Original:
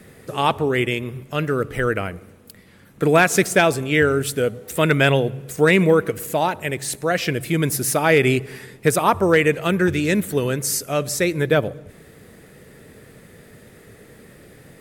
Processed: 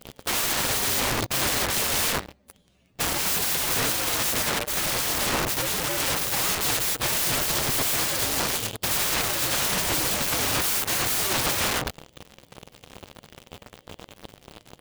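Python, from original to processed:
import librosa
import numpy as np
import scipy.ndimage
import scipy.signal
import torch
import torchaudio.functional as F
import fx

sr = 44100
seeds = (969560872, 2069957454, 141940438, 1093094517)

y = fx.partial_stretch(x, sr, pct=126)
y = fx.leveller(y, sr, passes=5)
y = (np.mod(10.0 ** (19.0 / 20.0) * y + 1.0, 2.0) - 1.0) / 10.0 ** (19.0 / 20.0)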